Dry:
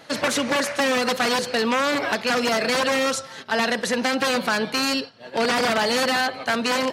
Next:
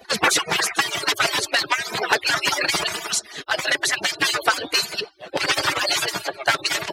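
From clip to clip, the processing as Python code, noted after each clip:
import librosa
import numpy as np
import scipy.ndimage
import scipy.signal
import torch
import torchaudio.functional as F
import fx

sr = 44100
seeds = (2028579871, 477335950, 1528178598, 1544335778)

y = fx.hpss_only(x, sr, part='percussive')
y = y * 10.0 ** (7.0 / 20.0)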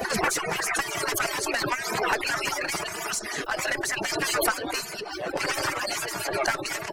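y = fx.diode_clip(x, sr, knee_db=-11.5)
y = fx.peak_eq(y, sr, hz=3600.0, db=-12.0, octaves=0.66)
y = fx.pre_swell(y, sr, db_per_s=31.0)
y = y * 10.0 ** (-4.5 / 20.0)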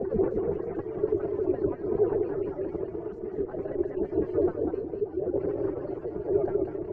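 y = fx.octave_divider(x, sr, octaves=2, level_db=-2.0)
y = fx.lowpass_res(y, sr, hz=400.0, q=4.9)
y = y + 10.0 ** (-6.5 / 20.0) * np.pad(y, (int(196 * sr / 1000.0), 0))[:len(y)]
y = y * 10.0 ** (-3.5 / 20.0)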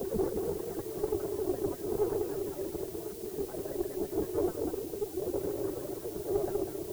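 y = fx.diode_clip(x, sr, knee_db=-19.0)
y = fx.dmg_noise_colour(y, sr, seeds[0], colour='blue', level_db=-45.0)
y = y * 10.0 ** (-4.0 / 20.0)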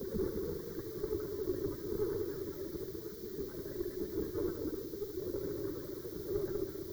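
y = fx.fixed_phaser(x, sr, hz=2700.0, stages=6)
y = y + 10.0 ** (-8.0 / 20.0) * np.pad(y, (int(71 * sr / 1000.0), 0))[:len(y)]
y = y * 10.0 ** (-2.0 / 20.0)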